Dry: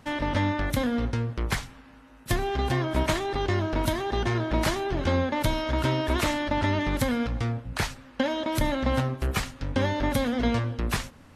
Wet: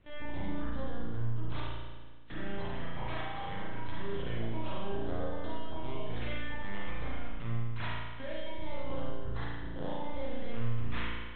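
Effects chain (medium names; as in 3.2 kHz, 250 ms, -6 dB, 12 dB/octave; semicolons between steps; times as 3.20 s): reverb removal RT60 1.8 s; reverse; compression 6:1, threshold -41 dBFS, peak gain reduction 19.5 dB; reverse; LFO notch sine 0.24 Hz 380–2500 Hz; LPC vocoder at 8 kHz pitch kept; on a send: flutter echo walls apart 9 m, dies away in 0.36 s; on the sum: spring tank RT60 1.4 s, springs 35 ms, chirp 55 ms, DRR -5.5 dB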